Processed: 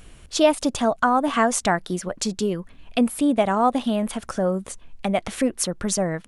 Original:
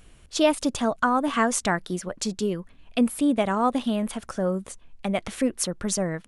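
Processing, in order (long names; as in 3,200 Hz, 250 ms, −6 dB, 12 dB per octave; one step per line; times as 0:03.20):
dynamic equaliser 730 Hz, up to +5 dB, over −37 dBFS, Q 2.5
in parallel at 0 dB: downward compressor, threshold −34 dBFS, peak gain reduction 20 dB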